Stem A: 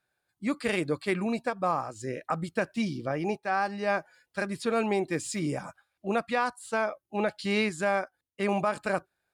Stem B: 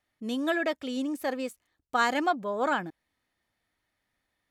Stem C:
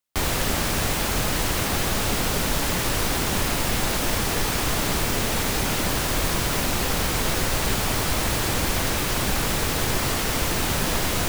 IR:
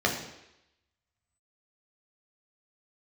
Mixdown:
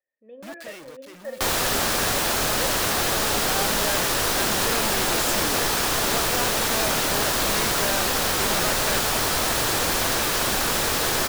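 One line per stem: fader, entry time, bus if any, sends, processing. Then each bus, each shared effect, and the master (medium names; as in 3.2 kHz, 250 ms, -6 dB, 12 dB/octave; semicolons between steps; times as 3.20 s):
-2.0 dB, 0.00 s, no send, median filter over 3 samples; companded quantiser 2-bit; auto duck -13 dB, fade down 0.95 s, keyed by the second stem
+0.5 dB, 0.00 s, send -20.5 dB, cascade formant filter e
+2.5 dB, 1.25 s, send -22.5 dB, upward compressor, threshold -34 dBFS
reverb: on, RT60 0.85 s, pre-delay 8 ms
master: bass shelf 300 Hz -10.5 dB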